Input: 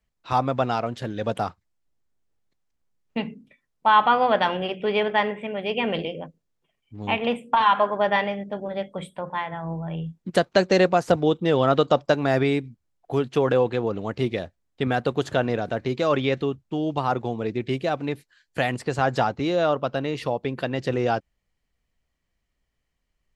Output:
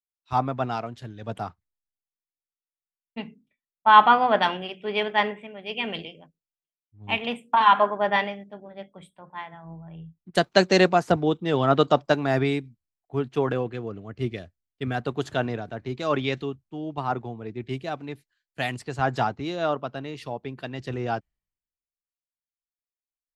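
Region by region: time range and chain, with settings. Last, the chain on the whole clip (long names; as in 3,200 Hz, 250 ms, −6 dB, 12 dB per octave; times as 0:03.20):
0:13.52–0:14.95: parametric band 890 Hz −10 dB 0.32 octaves + notch filter 3,800 Hz, Q 11
whole clip: parametric band 520 Hz −7.5 dB 0.23 octaves; multiband upward and downward expander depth 100%; level −2.5 dB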